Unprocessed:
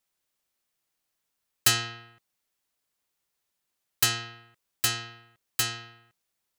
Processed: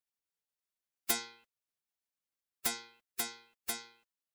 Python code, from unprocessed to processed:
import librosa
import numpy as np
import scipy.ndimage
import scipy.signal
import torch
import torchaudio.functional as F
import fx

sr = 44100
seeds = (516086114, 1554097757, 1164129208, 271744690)

y = fx.spec_gate(x, sr, threshold_db=-10, keep='weak')
y = fx.stretch_vocoder(y, sr, factor=0.66)
y = F.gain(torch.from_numpy(y), -1.5).numpy()